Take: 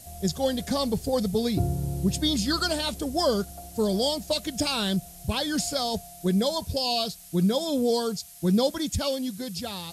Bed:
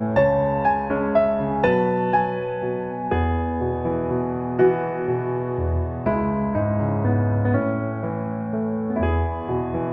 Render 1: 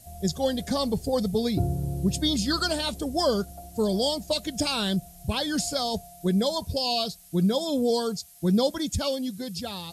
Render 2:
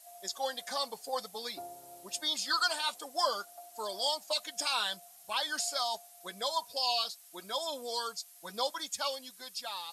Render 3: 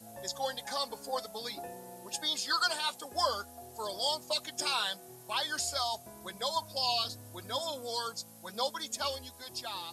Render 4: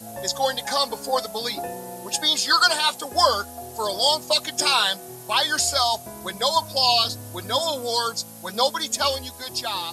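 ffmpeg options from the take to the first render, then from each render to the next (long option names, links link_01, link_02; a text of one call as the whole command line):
ffmpeg -i in.wav -af "afftdn=noise_reduction=6:noise_floor=-46" out.wav
ffmpeg -i in.wav -af "flanger=delay=3.1:depth=1:regen=-43:speed=0.53:shape=sinusoidal,highpass=frequency=990:width_type=q:width=1.7" out.wav
ffmpeg -i in.wav -i bed.wav -filter_complex "[1:a]volume=-30.5dB[link_01];[0:a][link_01]amix=inputs=2:normalize=0" out.wav
ffmpeg -i in.wav -af "volume=12dB" out.wav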